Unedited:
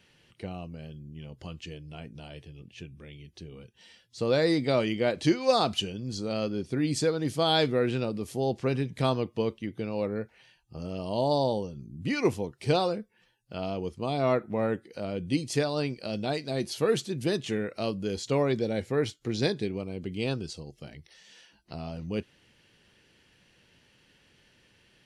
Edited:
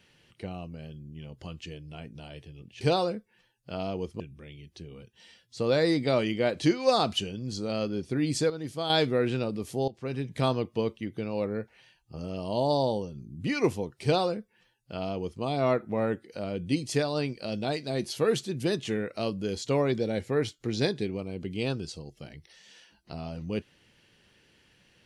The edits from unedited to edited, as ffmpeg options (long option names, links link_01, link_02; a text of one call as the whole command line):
ffmpeg -i in.wav -filter_complex "[0:a]asplit=6[link_01][link_02][link_03][link_04][link_05][link_06];[link_01]atrim=end=2.812[link_07];[link_02]atrim=start=12.638:end=14.032[link_08];[link_03]atrim=start=2.808:end=7.112[link_09];[link_04]atrim=start=7.108:end=7.512,asetpts=PTS-STARTPTS,volume=-6.5dB[link_10];[link_05]atrim=start=7.508:end=8.49,asetpts=PTS-STARTPTS,afade=type=out:start_time=0.978:duration=0.004:curve=hsin:silence=0.125893[link_11];[link_06]atrim=start=8.49,asetpts=PTS-STARTPTS,afade=type=in:duration=0.49:silence=0.125893[link_12];[link_07][link_08]acrossfade=duration=0.004:curve1=hsin:curve2=hsin[link_13];[link_13][link_09]acrossfade=duration=0.004:curve1=hsin:curve2=hsin[link_14];[link_14][link_10]acrossfade=duration=0.004:curve1=hsin:curve2=hsin[link_15];[link_11][link_12]concat=n=2:v=0:a=1[link_16];[link_15][link_16]acrossfade=duration=0.004:curve1=hsin:curve2=hsin" out.wav